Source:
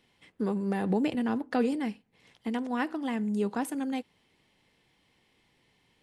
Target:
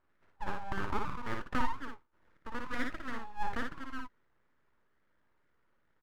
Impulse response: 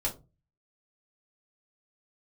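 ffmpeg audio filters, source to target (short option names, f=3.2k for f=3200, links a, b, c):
-af "afftfilt=real='re*between(b*sr/4096,390,1400)':imag='im*between(b*sr/4096,390,1400)':win_size=4096:overlap=0.75,aeval=exprs='abs(val(0))':c=same,aecho=1:1:57|69:0.631|0.133,volume=1dB"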